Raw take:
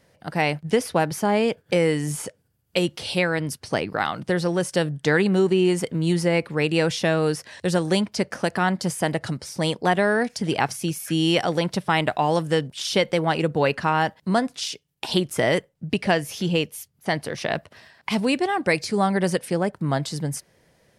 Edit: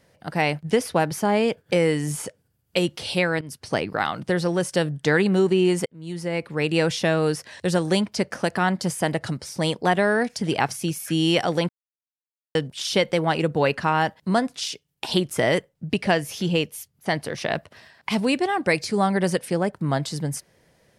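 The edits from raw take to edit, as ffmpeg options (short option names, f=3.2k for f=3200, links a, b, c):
-filter_complex "[0:a]asplit=5[a][b][c][d][e];[a]atrim=end=3.41,asetpts=PTS-STARTPTS,afade=t=out:st=3.406:d=0.004:c=hsin:silence=0.16788[f];[b]atrim=start=3.41:end=5.86,asetpts=PTS-STARTPTS,afade=t=in:d=0.27:silence=0.16788,afade=t=out:st=2.446:d=0.004:c=hsin[g];[c]atrim=start=5.86:end=11.69,asetpts=PTS-STARTPTS,afade=t=in:d=0.9,afade=t=out:st=5.826:d=0.004:c=hsin[h];[d]atrim=start=11.69:end=12.55,asetpts=PTS-STARTPTS,volume=0[i];[e]atrim=start=12.55,asetpts=PTS-STARTPTS,afade=t=in:d=0.004:c=hsin[j];[f][g][h][i][j]concat=n=5:v=0:a=1"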